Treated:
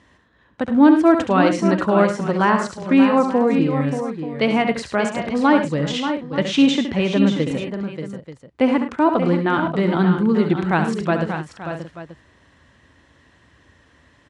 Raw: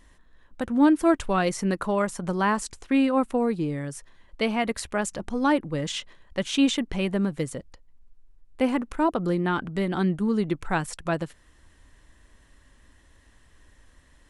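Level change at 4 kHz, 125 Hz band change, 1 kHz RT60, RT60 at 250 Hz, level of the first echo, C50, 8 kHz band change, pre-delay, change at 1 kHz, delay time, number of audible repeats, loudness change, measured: +5.5 dB, +8.0 dB, no reverb audible, no reverb audible, −8.0 dB, no reverb audible, −2.0 dB, no reverb audible, +7.5 dB, 70 ms, 5, +7.0 dB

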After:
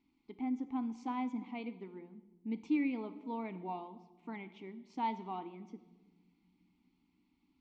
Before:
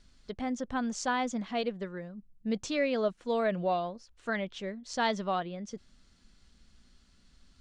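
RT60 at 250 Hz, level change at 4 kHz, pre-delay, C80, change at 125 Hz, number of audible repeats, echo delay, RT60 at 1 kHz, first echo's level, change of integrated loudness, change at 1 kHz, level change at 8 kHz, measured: 3.5 s, −18.0 dB, 3 ms, 16.5 dB, −10.5 dB, no echo audible, no echo audible, 1.1 s, no echo audible, −7.0 dB, −7.0 dB, below −25 dB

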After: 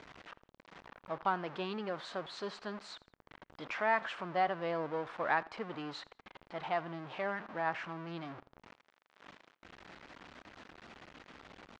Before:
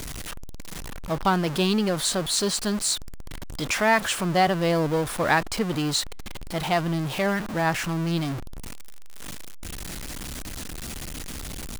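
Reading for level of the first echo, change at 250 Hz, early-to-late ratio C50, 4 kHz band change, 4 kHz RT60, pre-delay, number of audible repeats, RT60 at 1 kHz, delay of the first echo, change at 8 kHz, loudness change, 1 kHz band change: −22.5 dB, −18.0 dB, no reverb audible, −19.5 dB, no reverb audible, no reverb audible, 2, no reverb audible, 84 ms, below −30 dB, −12.0 dB, −9.5 dB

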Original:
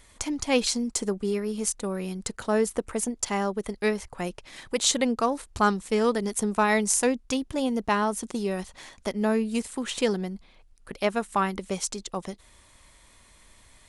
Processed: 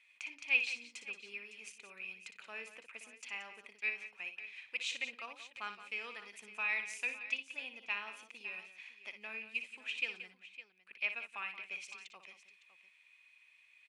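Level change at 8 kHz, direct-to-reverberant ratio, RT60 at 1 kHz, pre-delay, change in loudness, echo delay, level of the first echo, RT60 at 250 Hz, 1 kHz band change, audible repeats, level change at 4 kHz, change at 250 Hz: −25.0 dB, no reverb audible, no reverb audible, no reverb audible, −12.5 dB, 59 ms, −9.5 dB, no reverb audible, −22.0 dB, 3, −12.0 dB, −36.0 dB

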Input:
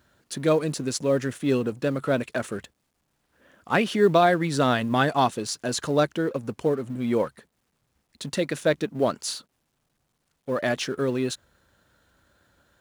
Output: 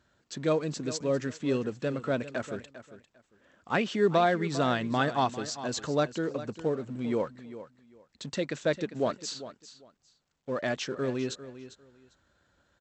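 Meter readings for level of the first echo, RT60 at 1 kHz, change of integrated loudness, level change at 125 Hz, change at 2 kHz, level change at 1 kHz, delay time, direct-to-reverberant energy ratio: −14.0 dB, no reverb audible, −5.5 dB, −5.5 dB, −5.5 dB, −5.5 dB, 399 ms, no reverb audible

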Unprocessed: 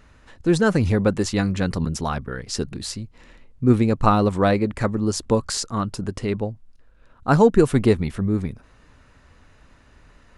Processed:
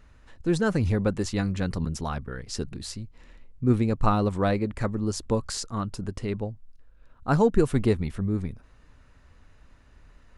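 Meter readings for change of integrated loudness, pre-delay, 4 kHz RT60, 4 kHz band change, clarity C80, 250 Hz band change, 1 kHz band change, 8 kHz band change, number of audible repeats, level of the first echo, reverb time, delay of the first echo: −5.5 dB, no reverb audible, no reverb audible, −6.5 dB, no reverb audible, −5.5 dB, −6.5 dB, −6.5 dB, no echo audible, no echo audible, no reverb audible, no echo audible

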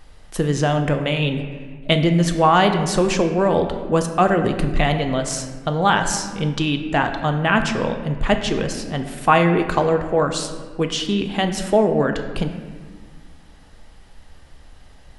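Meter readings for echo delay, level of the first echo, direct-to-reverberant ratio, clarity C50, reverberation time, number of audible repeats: no echo audible, no echo audible, 5.5 dB, 8.0 dB, 1.5 s, no echo audible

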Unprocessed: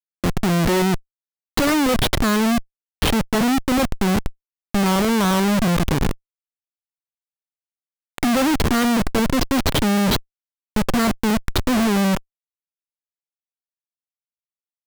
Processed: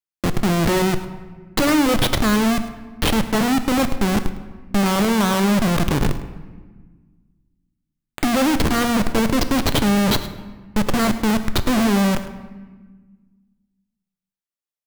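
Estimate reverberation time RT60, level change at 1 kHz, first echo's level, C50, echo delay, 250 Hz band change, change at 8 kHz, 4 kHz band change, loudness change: 1.4 s, +0.5 dB, −15.5 dB, 11.0 dB, 105 ms, +0.5 dB, +0.5 dB, +0.5 dB, +0.5 dB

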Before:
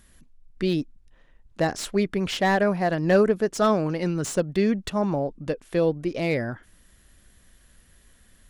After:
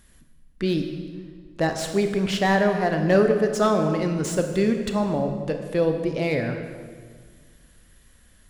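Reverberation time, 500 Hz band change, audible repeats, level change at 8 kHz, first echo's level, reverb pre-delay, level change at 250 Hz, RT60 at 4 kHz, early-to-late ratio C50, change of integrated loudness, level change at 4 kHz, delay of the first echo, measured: 1.7 s, +1.5 dB, no echo audible, +1.0 dB, no echo audible, 23 ms, +1.5 dB, 1.3 s, 6.5 dB, +1.5 dB, +1.0 dB, no echo audible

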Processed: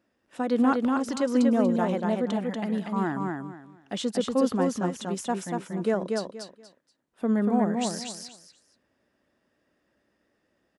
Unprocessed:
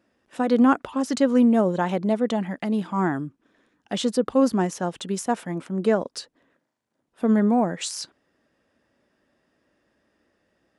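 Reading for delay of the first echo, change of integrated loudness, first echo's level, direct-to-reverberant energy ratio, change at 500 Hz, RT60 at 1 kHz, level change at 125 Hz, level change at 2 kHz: 238 ms, −3.5 dB, −3.5 dB, no reverb audible, −3.5 dB, no reverb audible, −3.0 dB, −3.5 dB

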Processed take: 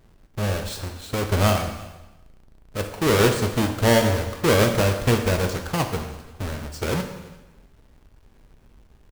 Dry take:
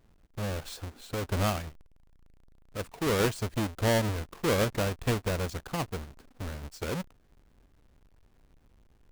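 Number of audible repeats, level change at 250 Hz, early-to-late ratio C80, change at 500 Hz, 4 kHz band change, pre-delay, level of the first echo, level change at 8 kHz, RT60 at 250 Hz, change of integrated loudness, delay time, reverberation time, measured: 1, +8.5 dB, 9.5 dB, +9.0 dB, +9.0 dB, 3 ms, −24.0 dB, +8.5 dB, 1.1 s, +9.0 dB, 344 ms, 1.1 s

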